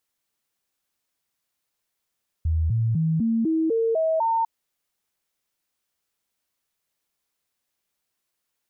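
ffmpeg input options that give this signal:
-f lavfi -i "aevalsrc='0.112*clip(min(mod(t,0.25),0.25-mod(t,0.25))/0.005,0,1)*sin(2*PI*80.3*pow(2,floor(t/0.25)/2)*mod(t,0.25))':d=2:s=44100"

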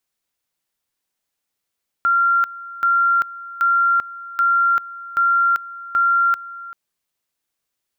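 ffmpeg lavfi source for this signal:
-f lavfi -i "aevalsrc='pow(10,(-13-18*gte(mod(t,0.78),0.39))/20)*sin(2*PI*1380*t)':d=4.68:s=44100"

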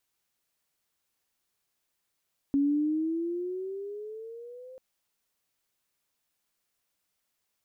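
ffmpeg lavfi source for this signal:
-f lavfi -i "aevalsrc='pow(10,(-21-23*t/2.24)/20)*sin(2*PI*277*2.24/(11*log(2)/12)*(exp(11*log(2)/12*t/2.24)-1))':d=2.24:s=44100"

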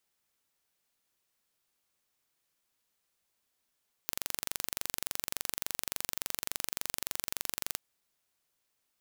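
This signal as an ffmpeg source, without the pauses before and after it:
-f lavfi -i "aevalsrc='0.531*eq(mod(n,1877),0)':d=3.7:s=44100"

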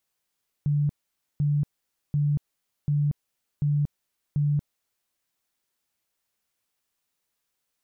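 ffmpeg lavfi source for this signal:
-f lavfi -i "aevalsrc='0.1*sin(2*PI*146*mod(t,0.74))*lt(mod(t,0.74),34/146)':d=4.44:s=44100"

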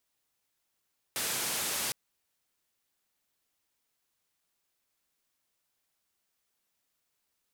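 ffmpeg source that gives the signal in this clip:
-f lavfi -i "anoisesrc=c=white:d=0.76:r=44100:seed=1,highpass=f=100,lowpass=f=13000,volume=-25.8dB"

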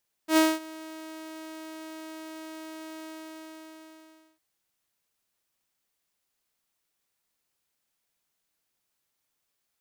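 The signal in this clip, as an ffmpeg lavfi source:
-f lavfi -i "aevalsrc='0.2*(2*mod(317*t,1)-1)':d=4.11:s=44100,afade=t=in:d=0.09,afade=t=out:st=0.09:d=0.22:silence=0.0708,afade=t=out:st=2.76:d=1.35"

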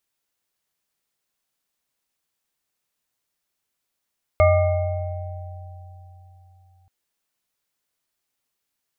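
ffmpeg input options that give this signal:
-f lavfi -i "aevalsrc='0.158*pow(10,-3*t/3.81)*sin(2*PI*90.3*t)+0.237*pow(10,-3*t/2.08)*sin(2*PI*618*t)+0.0355*pow(10,-3*t/4.11)*sin(2*PI*777*t)+0.0891*pow(10,-3*t/0.84)*sin(2*PI*1200*t)+0.0631*pow(10,-3*t/1.1)*sin(2*PI*2150*t)':d=2.48:s=44100"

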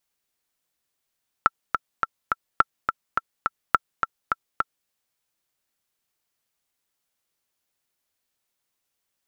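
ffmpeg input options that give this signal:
-f lavfi -i "aevalsrc='pow(10,(-2-6*gte(mod(t,4*60/210),60/210))/20)*sin(2*PI*1340*mod(t,60/210))*exp(-6.91*mod(t,60/210)/0.03)':d=3.42:s=44100"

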